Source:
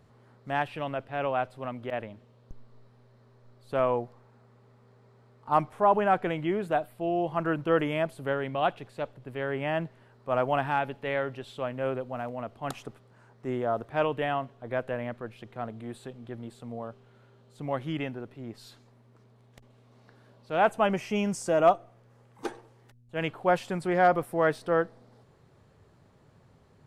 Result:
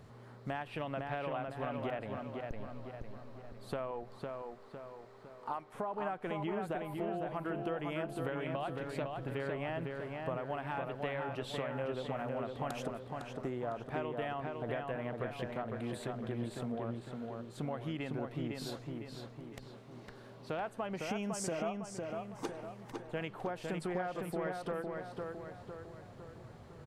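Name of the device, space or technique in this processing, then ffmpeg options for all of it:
serial compression, peaks first: -filter_complex "[0:a]asettb=1/sr,asplit=3[link_01][link_02][link_03];[link_01]atrim=end=3.914[link_04];[link_02]atrim=start=3.91:end=5.74,asetpts=PTS-STARTPTS,afade=type=in:duration=0.004:curve=qsin,afade=type=out:start_time=1.826:duration=0.004:curve=qsin,equalizer=frequency=100:width=0.49:gain=-14[link_05];[link_03]atrim=start=5.736[link_06];[link_04][link_05]acrossfade=duration=0.004:curve1=hsin:curve2=qsin[link_07];[link_07][link_06]acrossfade=duration=0.004:curve1=qsin:curve2=hsin,acompressor=threshold=-35dB:ratio=6,acompressor=threshold=-42dB:ratio=2.5,asplit=2[link_08][link_09];[link_09]adelay=506,lowpass=frequency=3800:poles=1,volume=-3.5dB,asplit=2[link_10][link_11];[link_11]adelay=506,lowpass=frequency=3800:poles=1,volume=0.5,asplit=2[link_12][link_13];[link_13]adelay=506,lowpass=frequency=3800:poles=1,volume=0.5,asplit=2[link_14][link_15];[link_15]adelay=506,lowpass=frequency=3800:poles=1,volume=0.5,asplit=2[link_16][link_17];[link_17]adelay=506,lowpass=frequency=3800:poles=1,volume=0.5,asplit=2[link_18][link_19];[link_19]adelay=506,lowpass=frequency=3800:poles=1,volume=0.5,asplit=2[link_20][link_21];[link_21]adelay=506,lowpass=frequency=3800:poles=1,volume=0.5[link_22];[link_08][link_10][link_12][link_14][link_16][link_18][link_20][link_22]amix=inputs=8:normalize=0,volume=4.5dB"

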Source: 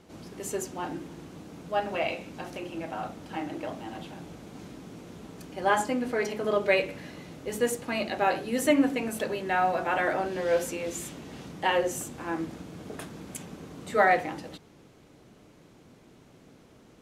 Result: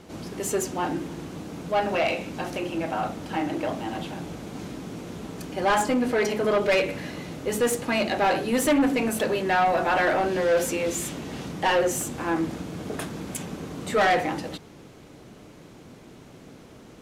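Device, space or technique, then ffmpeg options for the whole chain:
saturation between pre-emphasis and de-emphasis: -af "highshelf=frequency=5200:gain=8,asoftclip=type=tanh:threshold=-24.5dB,highshelf=frequency=5200:gain=-8,volume=8dB"

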